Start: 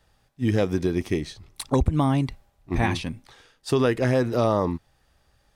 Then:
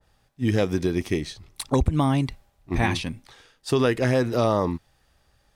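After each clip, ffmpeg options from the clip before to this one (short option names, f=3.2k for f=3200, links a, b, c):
-af "adynamicequalizer=threshold=0.0141:dfrequency=1700:dqfactor=0.7:tfrequency=1700:tqfactor=0.7:attack=5:release=100:ratio=0.375:range=1.5:mode=boostabove:tftype=highshelf"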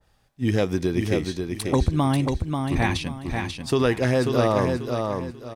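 -af "aecho=1:1:539|1078|1617|2156:0.562|0.169|0.0506|0.0152"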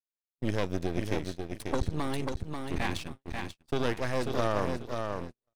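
-af "agate=range=-48dB:threshold=-29dB:ratio=16:detection=peak,aeval=exprs='max(val(0),0)':c=same,volume=-5dB"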